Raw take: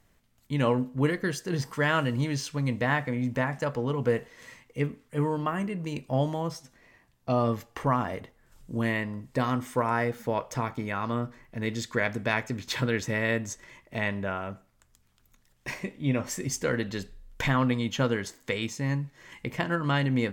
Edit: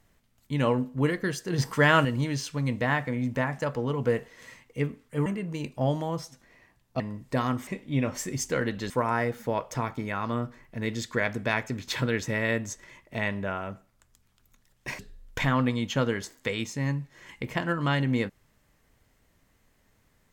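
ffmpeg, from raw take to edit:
-filter_complex "[0:a]asplit=8[a][b][c][d][e][f][g][h];[a]atrim=end=1.582[i];[b]atrim=start=1.578:end=2.052,asetpts=PTS-STARTPTS,volume=5dB[j];[c]atrim=start=2.048:end=5.262[k];[d]atrim=start=5.578:end=7.322[l];[e]atrim=start=9.028:end=9.702[m];[f]atrim=start=15.788:end=17.022[n];[g]atrim=start=9.698:end=15.792[o];[h]atrim=start=17.018[p];[i][j]acrossfade=d=0.004:c1=hsin:c2=hsin[q];[q][k]acrossfade=d=0.004:c1=hsin:c2=hsin[r];[r][l]acrossfade=d=0.004:c1=hsin:c2=hsin[s];[s][m]acrossfade=d=0.004:c1=hsin:c2=hsin[t];[t][n]acrossfade=d=0.004:c1=hsin:c2=hsin[u];[u][o]acrossfade=d=0.004:c1=hsin:c2=hsin[v];[v][p]acrossfade=d=0.004:c1=hsin:c2=hsin"

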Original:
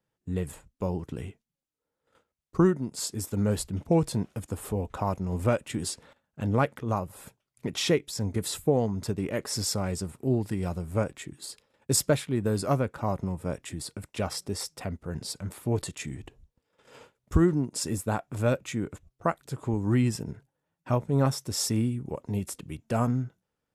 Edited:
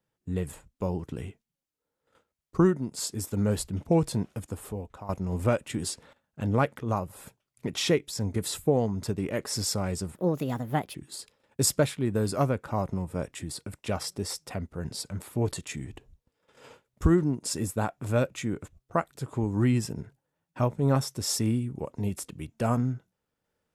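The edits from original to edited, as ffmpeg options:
-filter_complex "[0:a]asplit=4[a][b][c][d];[a]atrim=end=5.09,asetpts=PTS-STARTPTS,afade=t=out:st=4.32:d=0.77:silence=0.16788[e];[b]atrim=start=5.09:end=10.154,asetpts=PTS-STARTPTS,afade=t=in:d=0.004:c=hsin:silence=0.16788[f];[c]atrim=start=10.15:end=11.25,asetpts=PTS-STARTPTS,asetrate=60858,aresample=44100,atrim=end_sample=35152,asetpts=PTS-STARTPTS[g];[d]atrim=start=11.246[h];[e][f]concat=n=2:v=0:a=1[i];[i][g]acrossfade=d=0.004:c1=hsin:c2=hsin[j];[j][h]acrossfade=d=0.004:c1=hsin:c2=hsin"

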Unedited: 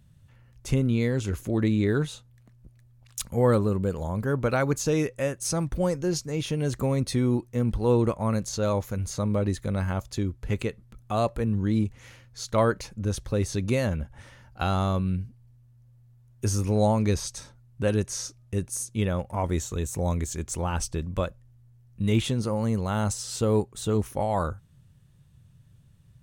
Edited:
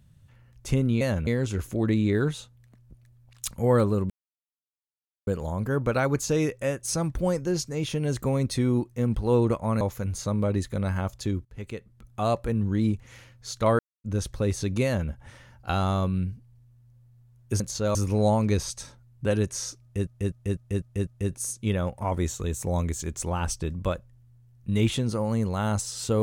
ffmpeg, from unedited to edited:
-filter_complex "[0:a]asplit=15[a][b][c][d][e][f][g][h][i][j][k][l][m][n][o];[a]atrim=end=1.012[p];[b]atrim=start=13.758:end=14.022[q];[c]atrim=start=1.008:end=3.84,asetpts=PTS-STARTPTS,afade=t=out:st=2.828:d=0.004:c=hsin,apad=pad_dur=1.17[r];[d]atrim=start=3.84:end=8.382,asetpts=PTS-STARTPTS,afade=t=in:d=0.004:c=hsin[s];[e]atrim=start=8.728:end=10.37,asetpts=PTS-STARTPTS,afade=t=out:st=1.638:d=0.004:c=hsin:silence=0.133352[t];[f]atrim=start=10.37:end=12.71,asetpts=PTS-STARTPTS,afade=t=in:d=0.78:silence=0.133352,afade=t=out:st=2.336:d=0.004:c=hsin[u];[g]atrim=start=12.71:end=12.96,asetpts=PTS-STARTPTS,volume=0[v];[h]atrim=start=12.96:end=16.522,asetpts=PTS-STARTPTS,afade=t=in:d=0.004:c=hsin[w];[i]atrim=start=8.378:end=8.732[x];[j]atrim=start=16.518:end=18.642[y];[k]atrim=start=18.388:end=18.642[z];[l]atrim=start=18.388:end=18.642[aa];[m]atrim=start=18.388:end=18.642[ab];[n]atrim=start=18.388:end=18.642[ac];[o]atrim=start=18.388[ad];[p][q]acrossfade=d=0.004:c1=hsin:c2=hsin[ae];[r][s]concat=n=2:v=0:a=1[af];[ae][af]acrossfade=d=0.004:c1=hsin:c2=hsin[ag];[t][u][v][w]concat=n=4:v=0:a=1[ah];[ag][ah]acrossfade=d=0.004:c1=hsin:c2=hsin[ai];[ai][x]acrossfade=d=0.004:c1=hsin:c2=hsin[aj];[aj][y]acrossfade=d=0.004:c1=hsin:c2=hsin[ak];[ak][z]acrossfade=d=0.004:c1=hsin:c2=hsin[al];[al][aa]acrossfade=d=0.004:c1=hsin:c2=hsin[am];[am][ab]acrossfade=d=0.004:c1=hsin:c2=hsin[an];[an][ac]acrossfade=d=0.004:c1=hsin:c2=hsin[ao];[ao][ad]acrossfade=d=0.004:c1=hsin:c2=hsin"

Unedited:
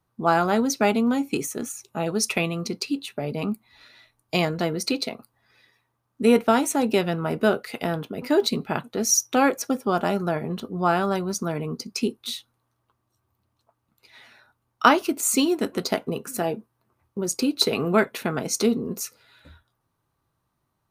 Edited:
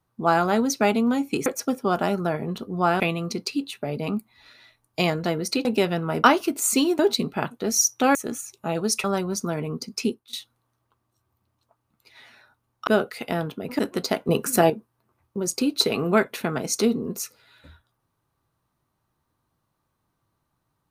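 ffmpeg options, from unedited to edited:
-filter_complex "[0:a]asplit=13[a][b][c][d][e][f][g][h][i][j][k][l][m];[a]atrim=end=1.462[n];[b]atrim=start=9.478:end=11.022[o];[c]atrim=start=2.348:end=5.002[p];[d]atrim=start=6.808:end=7.402[q];[e]atrim=start=14.848:end=15.602[r];[f]atrim=start=8.318:end=9.482[s];[g]atrim=start=1.458:end=2.352[t];[h]atrim=start=11.018:end=12.31,asetpts=PTS-STARTPTS,afade=t=out:st=1.042:d=0.25:c=qua:silence=0.133352[u];[i]atrim=start=12.31:end=14.852,asetpts=PTS-STARTPTS,afade=t=in:d=0.004:c=hsin:silence=0.133352[v];[j]atrim=start=7.398:end=8.322[w];[k]atrim=start=15.598:end=16.102[x];[l]atrim=start=16.098:end=16.512,asetpts=PTS-STARTPTS,volume=8dB[y];[m]atrim=start=16.508[z];[n][o]acrossfade=d=0.004:c1=hsin:c2=hsin[aa];[aa][p]acrossfade=d=0.004:c1=hsin:c2=hsin[ab];[ab][q]acrossfade=d=0.004:c1=hsin:c2=hsin[ac];[ac][r]acrossfade=d=0.004:c1=hsin:c2=hsin[ad];[ad][s]acrossfade=d=0.004:c1=hsin:c2=hsin[ae];[ae][t]acrossfade=d=0.004:c1=hsin:c2=hsin[af];[u][v]concat=n=2:v=0:a=1[ag];[af][ag]acrossfade=d=0.004:c1=hsin:c2=hsin[ah];[ah][w]acrossfade=d=0.004:c1=hsin:c2=hsin[ai];[ai][x]acrossfade=d=0.004:c1=hsin:c2=hsin[aj];[aj][y]acrossfade=d=0.004:c1=hsin:c2=hsin[ak];[ak][z]acrossfade=d=0.004:c1=hsin:c2=hsin"

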